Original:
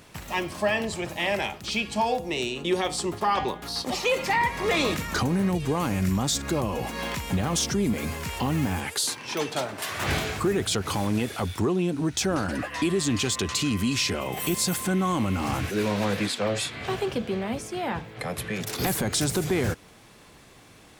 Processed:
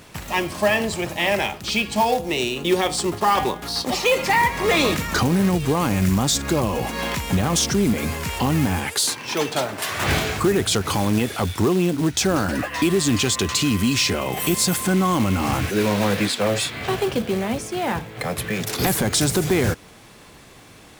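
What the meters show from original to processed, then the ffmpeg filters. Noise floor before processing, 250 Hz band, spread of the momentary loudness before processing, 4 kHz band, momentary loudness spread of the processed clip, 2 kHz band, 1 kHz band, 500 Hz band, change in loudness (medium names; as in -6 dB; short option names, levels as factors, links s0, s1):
-52 dBFS, +5.5 dB, 6 LU, +5.5 dB, 6 LU, +5.5 dB, +5.5 dB, +5.5 dB, +5.5 dB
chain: -af "acrusher=bits=4:mode=log:mix=0:aa=0.000001,volume=1.88"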